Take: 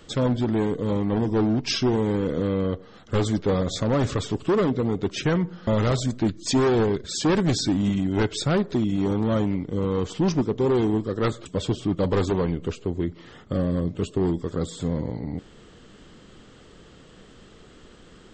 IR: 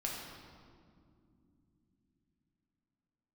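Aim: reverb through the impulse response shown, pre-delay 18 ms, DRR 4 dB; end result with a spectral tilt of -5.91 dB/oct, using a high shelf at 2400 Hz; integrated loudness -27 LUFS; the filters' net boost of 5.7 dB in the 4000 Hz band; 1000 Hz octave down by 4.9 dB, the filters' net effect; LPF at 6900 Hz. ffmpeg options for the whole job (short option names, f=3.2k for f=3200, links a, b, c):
-filter_complex "[0:a]lowpass=6.9k,equalizer=f=1k:t=o:g=-7.5,highshelf=f=2.4k:g=4.5,equalizer=f=4k:t=o:g=4,asplit=2[a][b];[1:a]atrim=start_sample=2205,adelay=18[c];[b][c]afir=irnorm=-1:irlink=0,volume=-6dB[d];[a][d]amix=inputs=2:normalize=0,volume=-4.5dB"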